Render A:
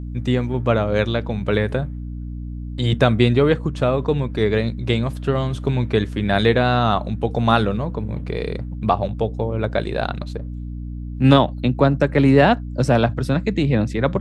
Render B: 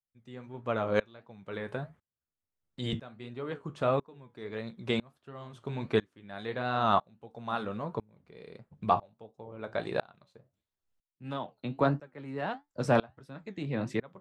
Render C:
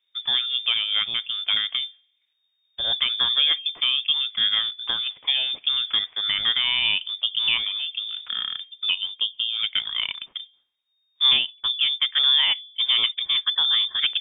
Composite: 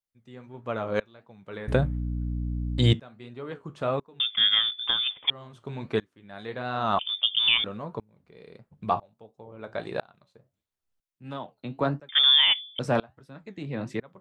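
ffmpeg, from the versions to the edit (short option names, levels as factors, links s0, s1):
-filter_complex "[2:a]asplit=3[s0][s1][s2];[1:a]asplit=5[s3][s4][s5][s6][s7];[s3]atrim=end=1.682[s8];[0:a]atrim=start=1.678:end=2.932[s9];[s4]atrim=start=2.928:end=4.202[s10];[s0]atrim=start=4.198:end=5.302[s11];[s5]atrim=start=5.298:end=6.992[s12];[s1]atrim=start=6.988:end=7.642[s13];[s6]atrim=start=7.638:end=12.092[s14];[s2]atrim=start=12.088:end=12.792[s15];[s7]atrim=start=12.788[s16];[s8][s9]acrossfade=d=0.004:c1=hsin:c2=hsin[s17];[s17][s10]acrossfade=d=0.004:c1=hsin:c2=hsin[s18];[s18][s11]acrossfade=d=0.004:c1=hsin:c2=hsin[s19];[s19][s12]acrossfade=d=0.004:c1=hsin:c2=hsin[s20];[s20][s13]acrossfade=d=0.004:c1=hsin:c2=hsin[s21];[s21][s14]acrossfade=d=0.004:c1=hsin:c2=hsin[s22];[s22][s15]acrossfade=d=0.004:c1=hsin:c2=hsin[s23];[s23][s16]acrossfade=d=0.004:c1=hsin:c2=hsin"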